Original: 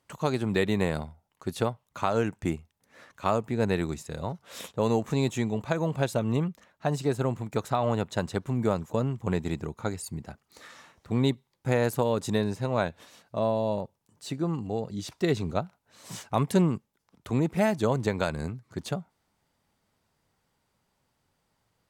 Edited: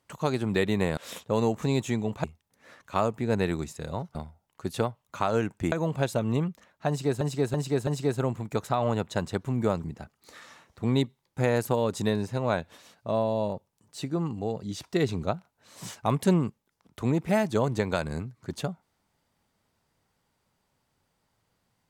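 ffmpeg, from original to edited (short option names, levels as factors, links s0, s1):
-filter_complex "[0:a]asplit=9[s0][s1][s2][s3][s4][s5][s6][s7][s8];[s0]atrim=end=0.972[s9];[s1]atrim=start=4.448:end=5.722[s10];[s2]atrim=start=2.538:end=4.452[s11];[s3]atrim=start=0.968:end=2.542[s12];[s4]atrim=start=5.718:end=7.212[s13];[s5]atrim=start=6.878:end=7.212[s14];[s6]atrim=start=6.878:end=7.212[s15];[s7]atrim=start=6.878:end=8.852[s16];[s8]atrim=start=10.118[s17];[s9][s10]acrossfade=d=0.004:c1=hsin:c2=hsin[s18];[s18][s11]acrossfade=d=0.004:c1=hsin:c2=hsin[s19];[s19][s12]acrossfade=d=0.004:c1=hsin:c2=hsin[s20];[s20][s13]acrossfade=d=0.004:c1=hsin:c2=hsin[s21];[s21][s14]acrossfade=d=0.004:c1=hsin:c2=hsin[s22];[s22][s15]acrossfade=d=0.004:c1=hsin:c2=hsin[s23];[s23][s16]acrossfade=d=0.004:c1=hsin:c2=hsin[s24];[s24][s17]acrossfade=d=0.004:c1=hsin:c2=hsin"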